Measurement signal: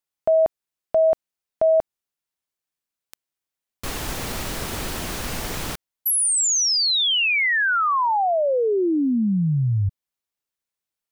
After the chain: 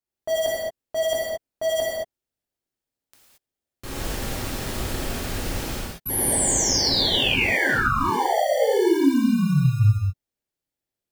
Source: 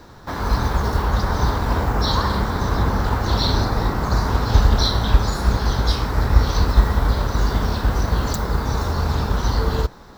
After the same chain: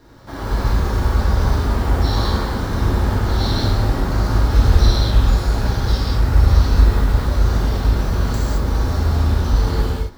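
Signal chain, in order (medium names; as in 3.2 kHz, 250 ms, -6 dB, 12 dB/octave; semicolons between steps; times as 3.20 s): in parallel at -5.5 dB: sample-rate reducer 1.3 kHz, jitter 0%; on the sum: gated-style reverb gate 250 ms flat, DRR -7 dB; trim -10 dB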